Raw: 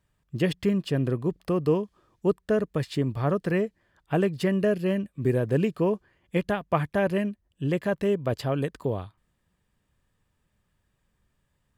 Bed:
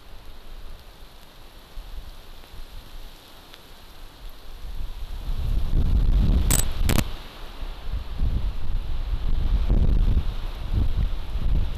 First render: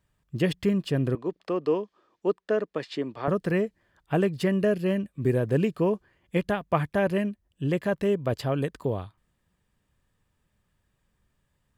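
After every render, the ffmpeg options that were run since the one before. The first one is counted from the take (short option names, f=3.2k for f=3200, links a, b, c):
-filter_complex "[0:a]asettb=1/sr,asplit=3[a][b][c];[a]atrim=end=1.154[d];[b]atrim=start=1.15:end=3.28,asetpts=PTS-STARTPTS,afade=t=in:d=0.004:c=qsin,afade=t=out:st=2.126:d=0.004:c=qsin,acrossover=split=240 6500:gain=0.0708 1 0.0794[e][f][g];[e][f][g]amix=inputs=3:normalize=0[h];[c]atrim=start=3.276[i];[d][h]acrossfade=d=0.004:c1=hsin:c2=qsin[j];[j][i]acrossfade=d=0.004:c1=qsin:c2=hsin"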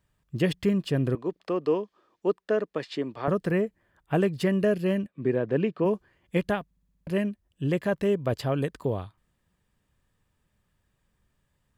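-filter_complex "[0:a]asettb=1/sr,asplit=3[a][b][c];[a]atrim=end=3.484[d];[b]atrim=start=3.48:end=4.13,asetpts=PTS-STARTPTS,afade=t=in:d=0.004:c=qsin,afade=t=out:st=0.646:d=0.004:c=qsin,equalizer=f=4.7k:t=o:w=1.3:g=-6.5[e];[c]atrim=start=4.126[f];[d][e]acrossfade=d=0.004:c1=hsin:c2=qsin[g];[g][f]acrossfade=d=0.004:c1=qsin:c2=hsin,asplit=3[h][i][j];[h]afade=t=out:st=5.06:d=0.02[k];[i]highpass=180,lowpass=3.1k,afade=t=in:st=5.06:d=0.02,afade=t=out:st=5.84:d=0.02[l];[j]afade=t=in:st=5.84:d=0.02[m];[k][l][m]amix=inputs=3:normalize=0,asplit=8[n][o][p][q][r][s][t][u];[n]atrim=end=6.712[v];[o]atrim=start=6.648:end=6.712[w];[p]atrim=start=6.648:end=6.712[x];[q]atrim=start=6.648:end=6.712[y];[r]atrim=start=6.648:end=6.712[z];[s]atrim=start=6.648:end=6.712[aa];[t]atrim=start=6.648:end=6.712[ab];[u]atrim=start=7.068[ac];[v][w]acrossfade=d=0.004:c1=hsin:c2=hsin[ad];[ad][x]acrossfade=d=0.004:c1=hsin:c2=hsin[ae];[ae][y]acrossfade=d=0.004:c1=hsin:c2=hsin[af];[af][z]acrossfade=d=0.004:c1=hsin:c2=hsin[ag];[ag][aa]acrossfade=d=0.004:c1=hsin:c2=hsin[ah];[ah][ab]acrossfade=d=0.004:c1=hsin:c2=hsin[ai];[ai][ac]acrossfade=d=0.004:c1=hsin:c2=hsin"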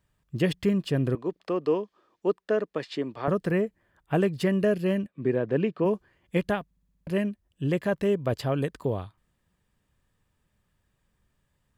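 -af anull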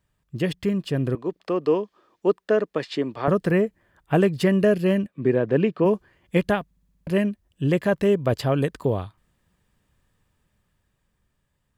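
-af "dynaudnorm=f=160:g=17:m=5dB"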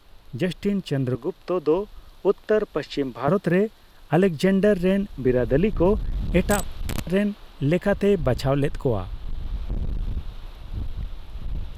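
-filter_complex "[1:a]volume=-7.5dB[a];[0:a][a]amix=inputs=2:normalize=0"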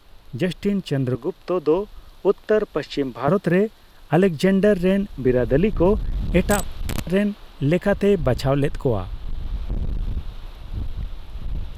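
-af "volume=2dB"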